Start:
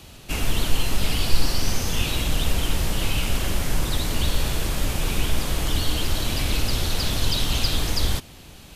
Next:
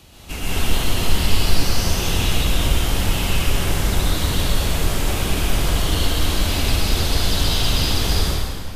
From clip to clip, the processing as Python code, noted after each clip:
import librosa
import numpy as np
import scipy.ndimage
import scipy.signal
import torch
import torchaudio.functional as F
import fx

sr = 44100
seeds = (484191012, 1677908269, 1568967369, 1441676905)

y = fx.rev_plate(x, sr, seeds[0], rt60_s=2.1, hf_ratio=0.7, predelay_ms=110, drr_db=-7.0)
y = F.gain(torch.from_numpy(y), -3.0).numpy()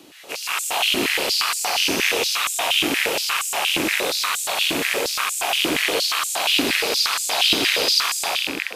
y = fx.rattle_buzz(x, sr, strikes_db=-27.0, level_db=-14.0)
y = fx.filter_held_highpass(y, sr, hz=8.5, low_hz=300.0, high_hz=7500.0)